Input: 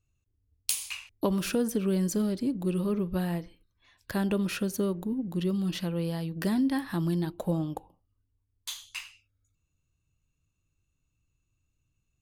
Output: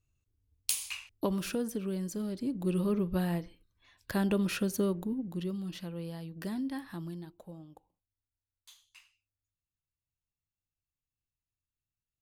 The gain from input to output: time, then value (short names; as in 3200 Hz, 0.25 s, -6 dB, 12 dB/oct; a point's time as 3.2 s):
0.95 s -2 dB
2.13 s -9 dB
2.75 s -1 dB
4.94 s -1 dB
5.67 s -9 dB
6.86 s -9 dB
7.51 s -19 dB